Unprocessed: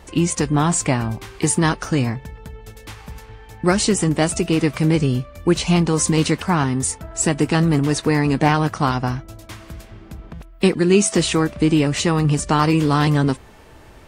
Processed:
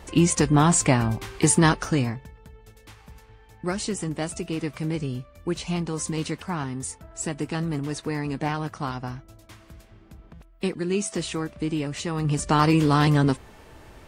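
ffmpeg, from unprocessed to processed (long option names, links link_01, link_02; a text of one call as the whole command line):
ffmpeg -i in.wav -af "volume=8dB,afade=type=out:start_time=1.67:duration=0.66:silence=0.298538,afade=type=in:start_time=12.1:duration=0.49:silence=0.375837" out.wav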